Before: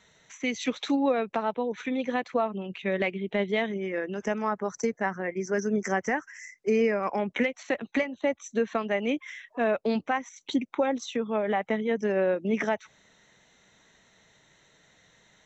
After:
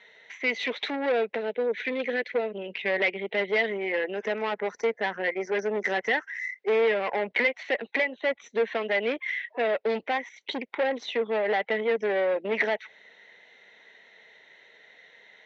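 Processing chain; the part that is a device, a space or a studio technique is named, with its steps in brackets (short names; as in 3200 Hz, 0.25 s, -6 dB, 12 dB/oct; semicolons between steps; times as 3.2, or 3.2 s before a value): 1.35–2.68 band shelf 950 Hz -13.5 dB 1.1 oct; guitar amplifier (tube stage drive 28 dB, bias 0.5; tone controls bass -15 dB, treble +3 dB; speaker cabinet 100–3800 Hz, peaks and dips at 110 Hz -7 dB, 160 Hz -5 dB, 300 Hz -4 dB, 450 Hz +5 dB, 1200 Hz -9 dB, 2000 Hz +8 dB); gain +7 dB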